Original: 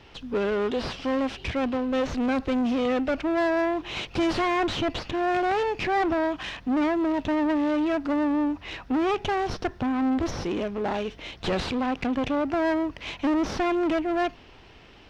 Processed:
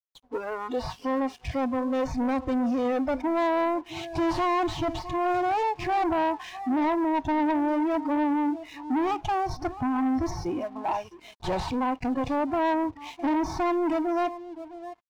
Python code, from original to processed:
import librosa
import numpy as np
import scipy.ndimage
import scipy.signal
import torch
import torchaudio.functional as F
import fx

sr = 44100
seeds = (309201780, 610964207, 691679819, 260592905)

p1 = x + fx.echo_feedback(x, sr, ms=660, feedback_pct=20, wet_db=-14, dry=0)
p2 = fx.noise_reduce_blind(p1, sr, reduce_db=18)
p3 = fx.peak_eq(p2, sr, hz=2700.0, db=-8.5, octaves=1.7)
p4 = np.sign(p3) * np.maximum(np.abs(p3) - 10.0 ** (-54.5 / 20.0), 0.0)
p5 = fx.peak_eq(p4, sr, hz=950.0, db=11.0, octaves=0.41)
p6 = 10.0 ** (-22.0 / 20.0) * np.tanh(p5 / 10.0 ** (-22.0 / 20.0))
y = F.gain(torch.from_numpy(p6), 1.5).numpy()